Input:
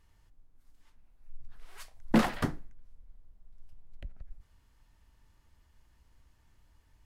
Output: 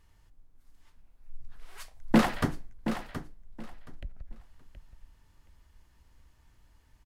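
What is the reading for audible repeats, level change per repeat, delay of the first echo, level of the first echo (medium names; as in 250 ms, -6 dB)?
2, -14.0 dB, 723 ms, -10.0 dB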